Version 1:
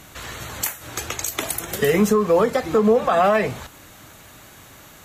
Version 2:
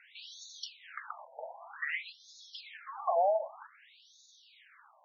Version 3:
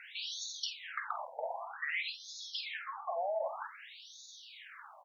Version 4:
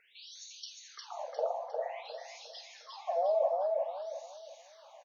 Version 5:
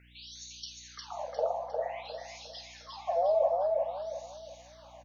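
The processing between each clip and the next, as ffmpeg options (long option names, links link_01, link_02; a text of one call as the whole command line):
ffmpeg -i in.wav -af "asubboost=boost=5.5:cutoff=240,afftfilt=real='re*between(b*sr/1024,660*pow(4900/660,0.5+0.5*sin(2*PI*0.53*pts/sr))/1.41,660*pow(4900/660,0.5+0.5*sin(2*PI*0.53*pts/sr))*1.41)':imag='im*between(b*sr/1024,660*pow(4900/660,0.5+0.5*sin(2*PI*0.53*pts/sr))/1.41,660*pow(4900/660,0.5+0.5*sin(2*PI*0.53*pts/sr))*1.41)':win_size=1024:overlap=0.75,volume=-6.5dB" out.wav
ffmpeg -i in.wav -filter_complex "[0:a]areverse,acompressor=threshold=-42dB:ratio=8,areverse,asplit=2[link_01][link_02];[link_02]adelay=49,volume=-10.5dB[link_03];[link_01][link_03]amix=inputs=2:normalize=0,volume=8dB" out.wav
ffmpeg -i in.wav -filter_complex "[0:a]firequalizer=gain_entry='entry(260,0);entry(440,13);entry(1400,-19);entry(3200,-12);entry(5000,-6)':delay=0.05:min_phase=1,asplit=2[link_01][link_02];[link_02]aecho=0:1:355|710|1065|1420|1775:0.708|0.248|0.0867|0.0304|0.0106[link_03];[link_01][link_03]amix=inputs=2:normalize=0" out.wav
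ffmpeg -i in.wav -af "aeval=exprs='val(0)+0.000891*(sin(2*PI*60*n/s)+sin(2*PI*2*60*n/s)/2+sin(2*PI*3*60*n/s)/3+sin(2*PI*4*60*n/s)/4+sin(2*PI*5*60*n/s)/5)':channel_layout=same,volume=2.5dB" out.wav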